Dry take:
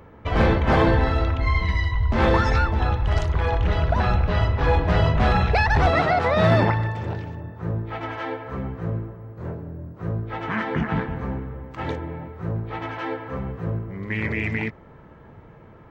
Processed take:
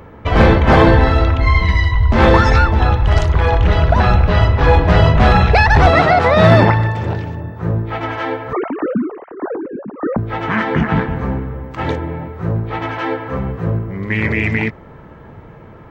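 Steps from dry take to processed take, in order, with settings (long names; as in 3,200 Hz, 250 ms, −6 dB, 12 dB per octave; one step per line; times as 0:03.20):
0:08.53–0:10.18: three sine waves on the formant tracks
level +8.5 dB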